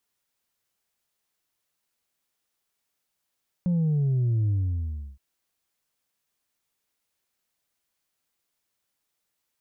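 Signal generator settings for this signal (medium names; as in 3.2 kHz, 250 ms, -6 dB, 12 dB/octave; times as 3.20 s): sub drop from 180 Hz, over 1.52 s, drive 2 dB, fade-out 0.69 s, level -21 dB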